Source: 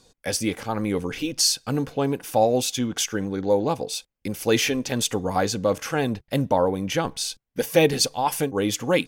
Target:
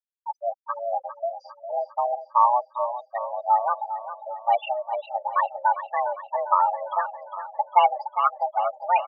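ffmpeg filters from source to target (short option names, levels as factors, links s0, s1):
-filter_complex "[0:a]aeval=exprs='val(0)+0.00631*sin(2*PI*1800*n/s)':c=same,afftfilt=real='re*gte(hypot(re,im),0.251)':imag='im*gte(hypot(re,im),0.251)':win_size=1024:overlap=0.75,aemphasis=mode=production:type=bsi,asplit=2[s0][s1];[s1]aecho=0:1:403|806|1209|1612|2015|2418:0.266|0.146|0.0805|0.0443|0.0243|0.0134[s2];[s0][s2]amix=inputs=2:normalize=0,highpass=f=190:t=q:w=0.5412,highpass=f=190:t=q:w=1.307,lowpass=f=2100:t=q:w=0.5176,lowpass=f=2100:t=q:w=0.7071,lowpass=f=2100:t=q:w=1.932,afreqshift=360,volume=1.33"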